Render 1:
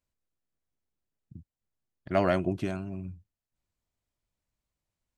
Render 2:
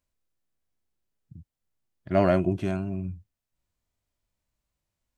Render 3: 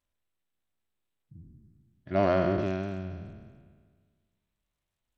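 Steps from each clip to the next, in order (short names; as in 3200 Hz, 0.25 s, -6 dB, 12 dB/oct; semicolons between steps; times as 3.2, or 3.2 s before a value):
harmonic-percussive split percussive -11 dB; gain +6.5 dB
spectral trails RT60 1.70 s; notches 60/120/180/240 Hz; gain -5 dB; SBC 64 kbps 32000 Hz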